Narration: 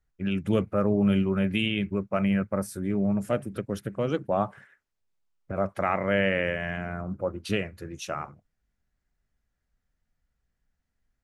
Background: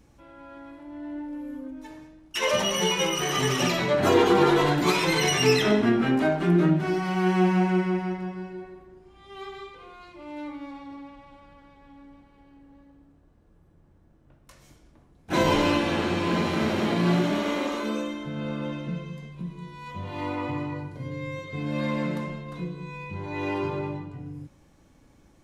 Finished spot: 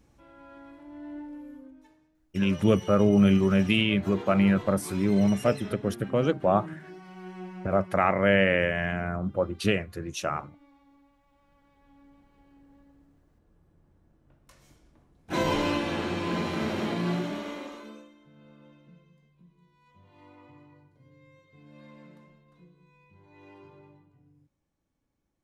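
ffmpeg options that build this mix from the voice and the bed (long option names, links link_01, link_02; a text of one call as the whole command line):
ffmpeg -i stem1.wav -i stem2.wav -filter_complex "[0:a]adelay=2150,volume=3dB[link_01];[1:a]volume=10.5dB,afade=type=out:start_time=1.18:duration=0.79:silence=0.177828,afade=type=in:start_time=11.23:duration=1.32:silence=0.177828,afade=type=out:start_time=16.83:duration=1.27:silence=0.11885[link_02];[link_01][link_02]amix=inputs=2:normalize=0" out.wav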